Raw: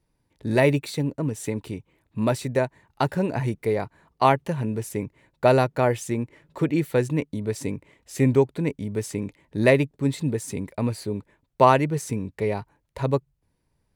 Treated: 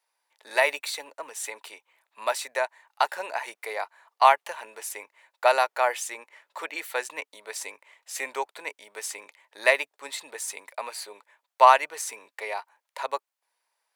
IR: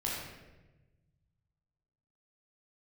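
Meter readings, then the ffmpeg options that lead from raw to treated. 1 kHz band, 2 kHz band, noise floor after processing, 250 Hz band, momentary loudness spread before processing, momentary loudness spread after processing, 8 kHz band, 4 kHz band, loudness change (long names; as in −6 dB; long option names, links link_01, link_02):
+2.5 dB, +3.5 dB, −85 dBFS, −28.5 dB, 13 LU, 18 LU, +3.5 dB, +3.5 dB, −2.5 dB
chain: -af "highpass=frequency=730:width=0.5412,highpass=frequency=730:width=1.3066,volume=3.5dB"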